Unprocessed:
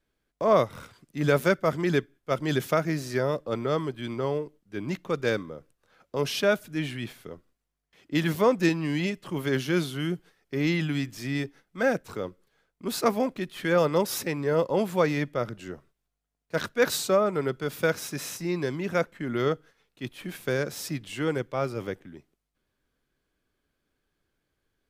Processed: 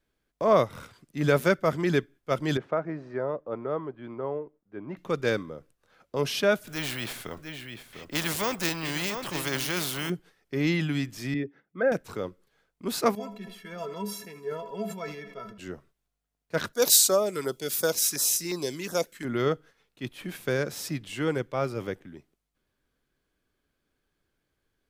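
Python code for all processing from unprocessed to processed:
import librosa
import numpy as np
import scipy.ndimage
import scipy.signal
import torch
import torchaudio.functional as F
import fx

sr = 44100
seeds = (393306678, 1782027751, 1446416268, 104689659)

y = fx.chain(x, sr, fx.lowpass(hz=1100.0, slope=12),
    fx.low_shelf(hz=270.0, db=-12.0), at=(2.57, 4.97))
y = fx.chain(y, sr, fx.resample_bad(factor=2, down='none', up='hold'),
    fx.echo_single(ms=700, db=-13.5),
    fx.spectral_comp(ratio=2.0), at=(6.67, 10.1))
y = fx.chain(y, sr, fx.envelope_sharpen(power=1.5),
    fx.bandpass_edges(low_hz=130.0, high_hz=3100.0), at=(11.34, 11.92))
y = fx.chain(y, sr, fx.stiff_resonator(f0_hz=200.0, decay_s=0.21, stiffness=0.03),
    fx.echo_feedback(ms=79, feedback_pct=58, wet_db=-18.0),
    fx.sustainer(db_per_s=71.0), at=(13.15, 15.58))
y = fx.chain(y, sr, fx.filter_lfo_notch(shape='saw_down', hz=2.8, low_hz=520.0, high_hz=3000.0, q=0.93),
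    fx.bass_treble(bass_db=-9, treble_db=15), at=(16.73, 19.25))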